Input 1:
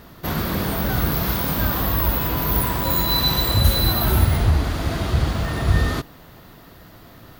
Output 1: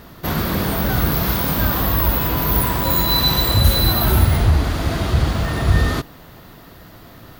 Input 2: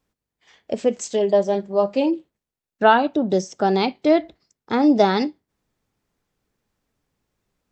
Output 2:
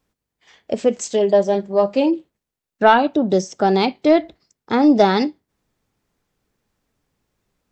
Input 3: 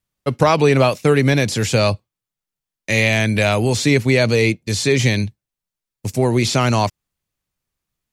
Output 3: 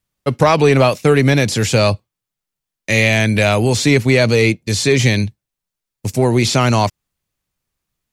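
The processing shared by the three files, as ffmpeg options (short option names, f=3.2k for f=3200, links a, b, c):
-af "asoftclip=type=tanh:threshold=-3dB,volume=3dB"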